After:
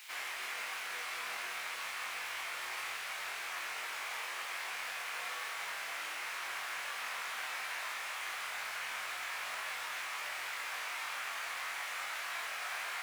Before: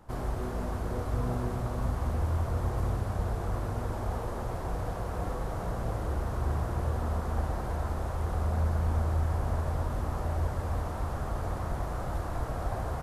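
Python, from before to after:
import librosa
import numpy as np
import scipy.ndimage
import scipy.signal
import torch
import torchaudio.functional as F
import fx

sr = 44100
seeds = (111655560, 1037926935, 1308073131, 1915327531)

p1 = fx.quant_dither(x, sr, seeds[0], bits=8, dither='triangular')
p2 = x + F.gain(torch.from_numpy(p1), -8.5).numpy()
p3 = fx.highpass_res(p2, sr, hz=2300.0, q=3.0)
p4 = fx.high_shelf(p3, sr, hz=9000.0, db=-7.5)
p5 = fx.room_flutter(p4, sr, wall_m=3.8, rt60_s=0.24)
y = F.gain(torch.from_numpy(p5), 4.0).numpy()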